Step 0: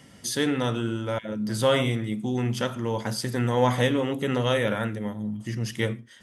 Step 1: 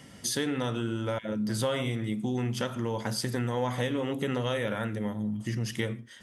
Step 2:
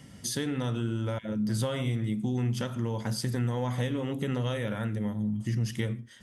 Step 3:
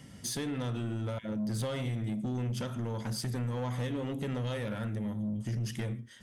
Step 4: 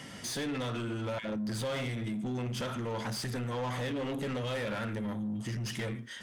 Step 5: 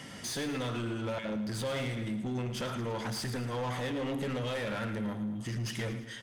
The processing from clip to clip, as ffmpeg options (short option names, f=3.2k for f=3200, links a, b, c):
-af "acompressor=threshold=-28dB:ratio=4,volume=1dB"
-af "bass=f=250:g=8,treble=f=4k:g=2,volume=-4dB"
-af "asoftclip=type=tanh:threshold=-27.5dB,volume=-1dB"
-filter_complex "[0:a]asplit=2[a][b];[b]highpass=f=720:p=1,volume=19dB,asoftclip=type=tanh:threshold=-28.5dB[c];[a][c]amix=inputs=2:normalize=0,lowpass=f=4.1k:p=1,volume=-6dB"
-af "aecho=1:1:111|222|333|444|555:0.237|0.126|0.0666|0.0353|0.0187"